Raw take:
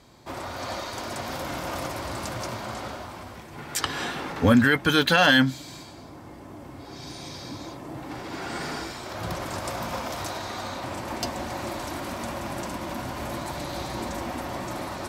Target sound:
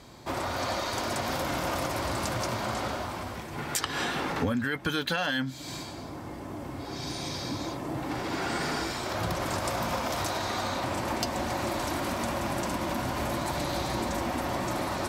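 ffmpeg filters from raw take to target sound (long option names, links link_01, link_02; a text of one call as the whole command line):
ffmpeg -i in.wav -af "acompressor=threshold=-30dB:ratio=8,volume=4dB" out.wav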